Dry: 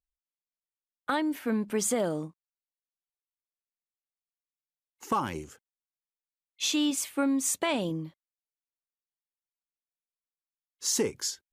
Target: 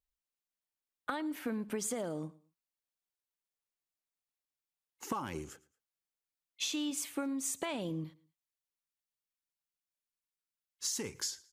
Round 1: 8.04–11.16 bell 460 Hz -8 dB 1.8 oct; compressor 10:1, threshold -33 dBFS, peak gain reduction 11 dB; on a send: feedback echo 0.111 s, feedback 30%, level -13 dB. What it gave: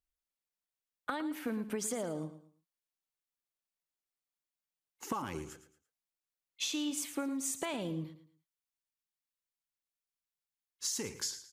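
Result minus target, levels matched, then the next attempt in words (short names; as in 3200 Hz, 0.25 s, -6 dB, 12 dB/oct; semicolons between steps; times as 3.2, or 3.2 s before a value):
echo-to-direct +9 dB
8.04–11.16 bell 460 Hz -8 dB 1.8 oct; compressor 10:1, threshold -33 dBFS, peak gain reduction 11 dB; on a send: feedback echo 0.111 s, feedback 30%, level -22 dB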